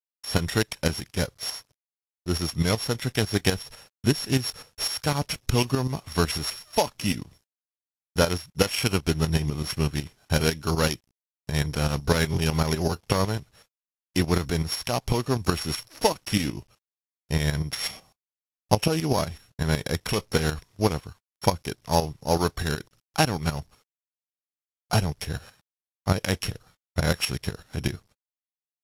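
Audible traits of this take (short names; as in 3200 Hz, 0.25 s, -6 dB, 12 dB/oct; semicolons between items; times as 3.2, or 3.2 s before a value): a buzz of ramps at a fixed pitch in blocks of 8 samples; tremolo saw up 8 Hz, depth 70%; a quantiser's noise floor 12-bit, dither none; AAC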